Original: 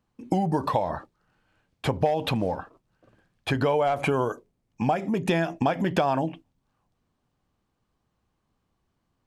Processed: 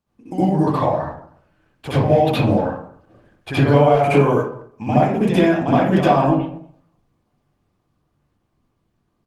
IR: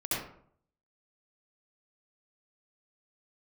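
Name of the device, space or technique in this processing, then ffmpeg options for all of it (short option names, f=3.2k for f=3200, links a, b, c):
speakerphone in a meeting room: -filter_complex "[1:a]atrim=start_sample=2205[a];[0:a][a]afir=irnorm=-1:irlink=0,asplit=2[b][c];[c]adelay=240,highpass=300,lowpass=3.4k,asoftclip=type=hard:threshold=-12dB,volume=-27dB[d];[b][d]amix=inputs=2:normalize=0,dynaudnorm=f=300:g=13:m=15dB,volume=-1dB" -ar 48000 -c:a libopus -b:a 20k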